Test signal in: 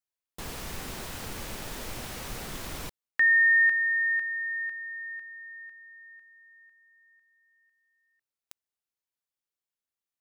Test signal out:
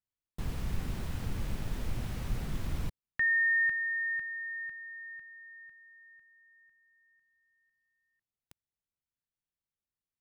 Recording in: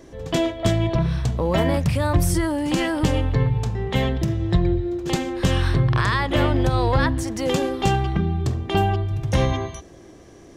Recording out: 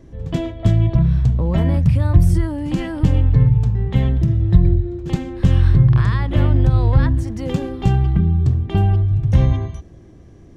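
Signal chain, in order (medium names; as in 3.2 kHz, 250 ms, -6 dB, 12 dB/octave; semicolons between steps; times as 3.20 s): tone controls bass +15 dB, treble -5 dB; trim -6.5 dB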